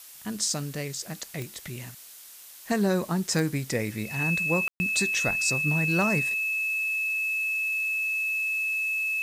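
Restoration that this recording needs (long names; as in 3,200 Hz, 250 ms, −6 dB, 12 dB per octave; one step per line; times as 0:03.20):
click removal
notch filter 2,600 Hz, Q 30
ambience match 0:04.68–0:04.80
broadband denoise 26 dB, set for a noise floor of −47 dBFS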